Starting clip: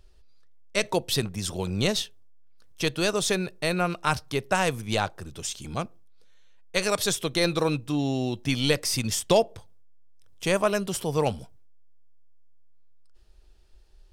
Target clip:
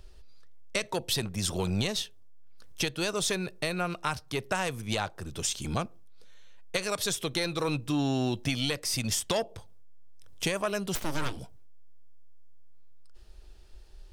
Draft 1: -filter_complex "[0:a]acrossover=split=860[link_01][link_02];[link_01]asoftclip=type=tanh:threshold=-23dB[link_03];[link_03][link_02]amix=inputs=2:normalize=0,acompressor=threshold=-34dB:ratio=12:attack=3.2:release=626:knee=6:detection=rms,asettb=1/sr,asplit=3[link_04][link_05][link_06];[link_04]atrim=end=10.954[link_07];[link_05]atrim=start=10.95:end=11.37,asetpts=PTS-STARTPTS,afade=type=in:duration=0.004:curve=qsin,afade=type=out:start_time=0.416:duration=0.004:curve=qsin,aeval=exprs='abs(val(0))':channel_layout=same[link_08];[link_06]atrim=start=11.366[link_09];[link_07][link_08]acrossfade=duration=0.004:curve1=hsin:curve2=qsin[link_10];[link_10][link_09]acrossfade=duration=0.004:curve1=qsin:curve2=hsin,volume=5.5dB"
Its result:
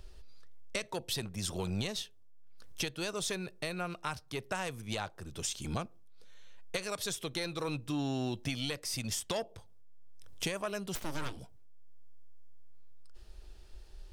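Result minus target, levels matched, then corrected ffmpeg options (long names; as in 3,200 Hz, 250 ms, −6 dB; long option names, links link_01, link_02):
downward compressor: peak gain reduction +6.5 dB
-filter_complex "[0:a]acrossover=split=860[link_01][link_02];[link_01]asoftclip=type=tanh:threshold=-23dB[link_03];[link_03][link_02]amix=inputs=2:normalize=0,acompressor=threshold=-27dB:ratio=12:attack=3.2:release=626:knee=6:detection=rms,asettb=1/sr,asplit=3[link_04][link_05][link_06];[link_04]atrim=end=10.954[link_07];[link_05]atrim=start=10.95:end=11.37,asetpts=PTS-STARTPTS,afade=type=in:duration=0.004:curve=qsin,afade=type=out:start_time=0.416:duration=0.004:curve=qsin,aeval=exprs='abs(val(0))':channel_layout=same[link_08];[link_06]atrim=start=11.366[link_09];[link_07][link_08]acrossfade=duration=0.004:curve1=hsin:curve2=qsin[link_10];[link_10][link_09]acrossfade=duration=0.004:curve1=qsin:curve2=hsin,volume=5.5dB"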